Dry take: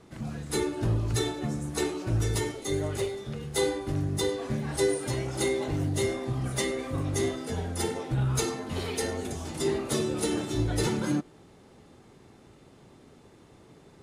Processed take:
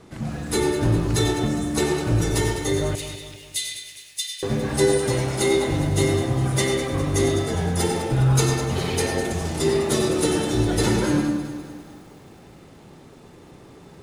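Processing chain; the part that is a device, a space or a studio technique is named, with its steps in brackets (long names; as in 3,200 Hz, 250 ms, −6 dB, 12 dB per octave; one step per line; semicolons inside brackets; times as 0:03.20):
bathroom (convolution reverb RT60 0.65 s, pre-delay 88 ms, DRR 3 dB)
0:02.95–0:04.43: Butterworth high-pass 2,300 Hz 36 dB per octave
feedback echo at a low word length 204 ms, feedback 55%, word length 9 bits, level −11.5 dB
level +6 dB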